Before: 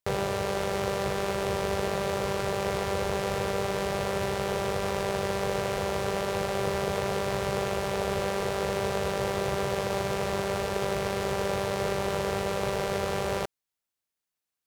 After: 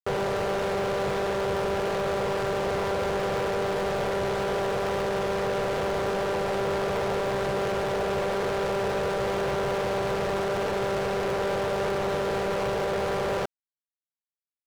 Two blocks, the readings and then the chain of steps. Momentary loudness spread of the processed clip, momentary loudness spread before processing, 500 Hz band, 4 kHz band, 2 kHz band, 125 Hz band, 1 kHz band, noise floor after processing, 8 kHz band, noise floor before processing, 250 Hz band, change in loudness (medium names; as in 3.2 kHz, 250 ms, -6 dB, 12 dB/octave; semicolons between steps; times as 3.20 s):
0 LU, 1 LU, +2.5 dB, -0.5 dB, +1.5 dB, -1.0 dB, +2.0 dB, under -85 dBFS, -4.0 dB, under -85 dBFS, +1.0 dB, +2.0 dB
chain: bass shelf 420 Hz +9 dB; overdrive pedal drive 27 dB, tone 4 kHz, clips at -10.5 dBFS; crossover distortion -40.5 dBFS; trim -8.5 dB